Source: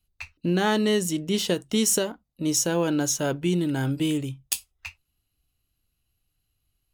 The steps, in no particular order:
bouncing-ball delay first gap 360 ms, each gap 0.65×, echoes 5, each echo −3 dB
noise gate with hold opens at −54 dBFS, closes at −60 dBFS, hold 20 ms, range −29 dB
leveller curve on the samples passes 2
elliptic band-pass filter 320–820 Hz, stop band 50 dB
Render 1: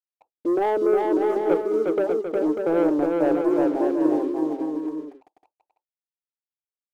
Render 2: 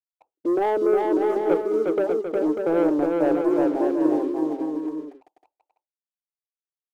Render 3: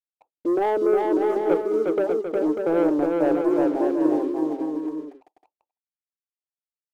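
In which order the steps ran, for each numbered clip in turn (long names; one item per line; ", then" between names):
elliptic band-pass filter, then leveller curve on the samples, then noise gate with hold, then bouncing-ball delay
noise gate with hold, then elliptic band-pass filter, then leveller curve on the samples, then bouncing-ball delay
elliptic band-pass filter, then leveller curve on the samples, then bouncing-ball delay, then noise gate with hold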